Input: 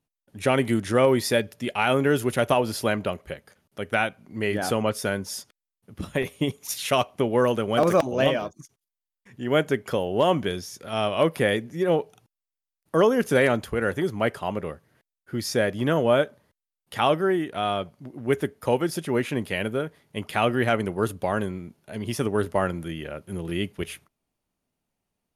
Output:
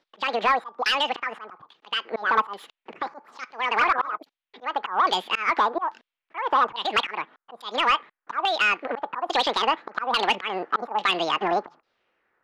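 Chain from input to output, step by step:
low-shelf EQ 79 Hz −7 dB
downward compressor 12 to 1, threshold −27 dBFS, peak gain reduction 13.5 dB
auto-filter low-pass saw down 0.58 Hz 510–2,100 Hz
change of speed 2.04×
volume swells 254 ms
dynamic equaliser 3,400 Hz, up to +4 dB, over −47 dBFS, Q 0.72
speech leveller within 5 dB 0.5 s
mid-hump overdrive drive 13 dB, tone 3,300 Hz, clips at −13 dBFS
level +4.5 dB

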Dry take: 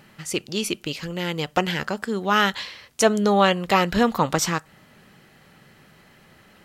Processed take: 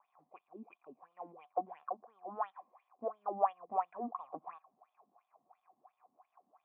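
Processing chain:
surface crackle 400 per second −32 dBFS
LFO wah 2.9 Hz 230–3,500 Hz, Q 7.3
formant resonators in series a
level +9.5 dB

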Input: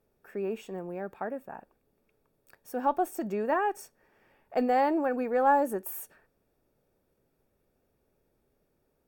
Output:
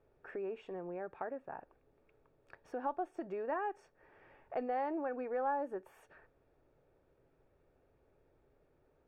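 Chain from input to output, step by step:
downward compressor 2 to 1, threshold −48 dBFS, peak gain reduction 16 dB
low-pass filter 2,400 Hz 12 dB per octave
parametric band 210 Hz −12.5 dB 0.37 octaves
level +3.5 dB

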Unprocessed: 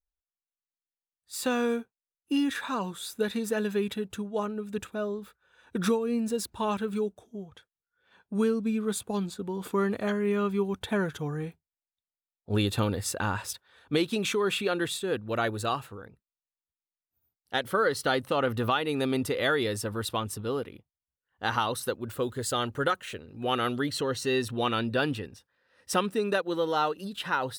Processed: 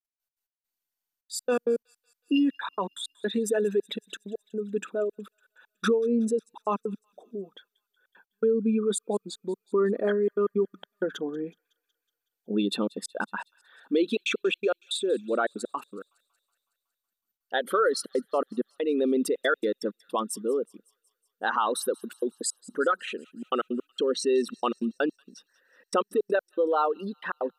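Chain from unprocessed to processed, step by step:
spectral envelope exaggerated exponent 2
in parallel at +1 dB: brickwall limiter −21.5 dBFS, peak gain reduction 7.5 dB
on the sum: gate pattern "x.x.x..xxxxxx." 162 BPM −60 dB
linear-phase brick-wall high-pass 180 Hz
on a send: delay with a high-pass on its return 185 ms, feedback 61%, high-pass 2,900 Hz, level −21 dB
on the sum: level −2.5 dB
MP2 192 kbit/s 48,000 Hz

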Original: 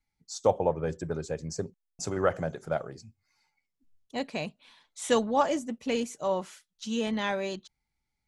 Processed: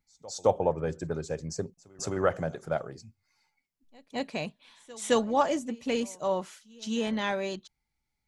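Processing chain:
echo ahead of the sound 215 ms −23 dB

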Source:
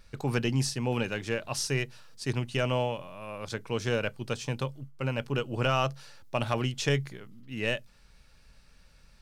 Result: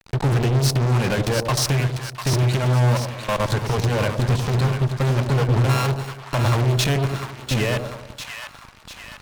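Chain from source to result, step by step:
0:05.69–0:06.35: samples sorted by size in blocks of 32 samples
high-shelf EQ 3,100 Hz −9 dB
hum removal 158.2 Hz, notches 2
output level in coarse steps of 20 dB
brickwall limiter −34 dBFS, peak gain reduction 7 dB
thirty-one-band graphic EQ 125 Hz +10 dB, 1,000 Hz +7 dB, 4,000 Hz +5 dB
fuzz pedal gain 48 dB, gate −55 dBFS
echo with a time of its own for lows and highs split 890 Hz, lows 96 ms, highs 697 ms, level −6.5 dB
level −4.5 dB

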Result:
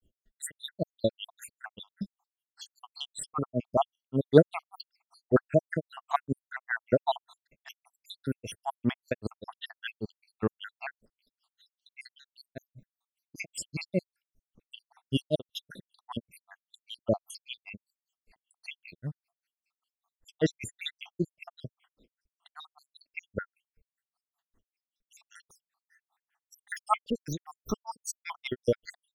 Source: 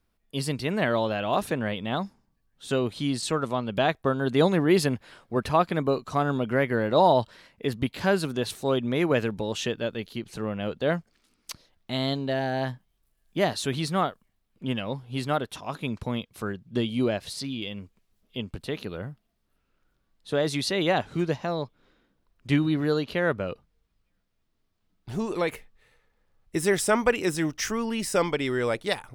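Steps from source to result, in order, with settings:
time-frequency cells dropped at random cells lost 79%
granular cloud 129 ms, grains 5.1 per second, spray 35 ms, pitch spread up and down by 0 semitones
level +6 dB

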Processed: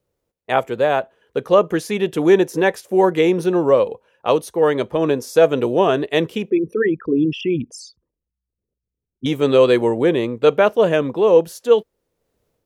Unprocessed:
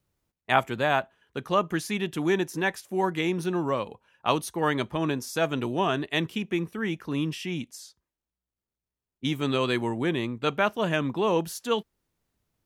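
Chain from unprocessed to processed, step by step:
0:06.50–0:09.26: spectral envelope exaggerated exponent 3
parametric band 490 Hz +15 dB 0.79 octaves
automatic gain control gain up to 8 dB
level −1 dB

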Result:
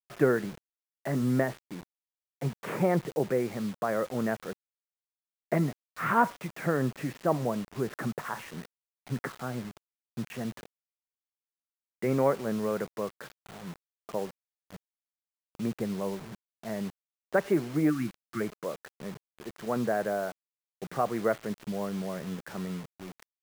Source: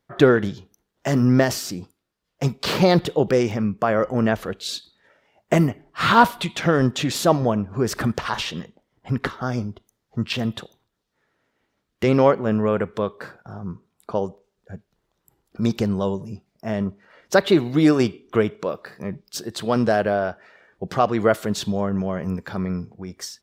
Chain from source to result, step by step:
time-frequency box erased 0:17.90–0:18.41, 360–1,100 Hz
elliptic band-pass filter 130–2,100 Hz, stop band 40 dB
bit-depth reduction 6 bits, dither none
level −9 dB

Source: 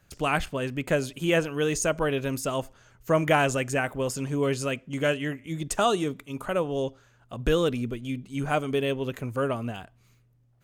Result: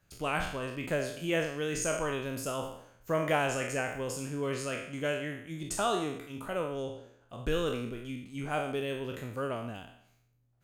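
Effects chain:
peak hold with a decay on every bin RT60 0.69 s
level −8.5 dB

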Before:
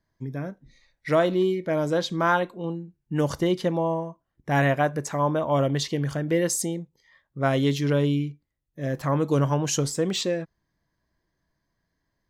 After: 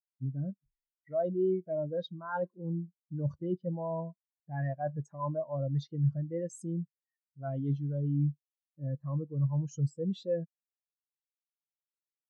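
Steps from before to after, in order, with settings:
dynamic equaliser 380 Hz, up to −5 dB, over −33 dBFS, Q 1.1
reversed playback
downward compressor 8 to 1, threshold −30 dBFS, peak gain reduction 12.5 dB
reversed playback
every bin expanded away from the loudest bin 2.5 to 1

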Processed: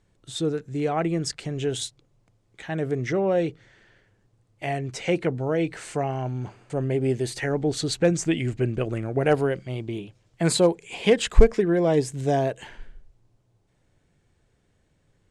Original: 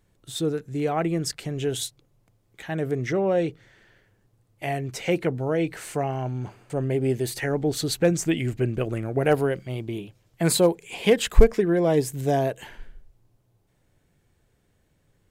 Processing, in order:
low-pass filter 8,900 Hz 24 dB per octave

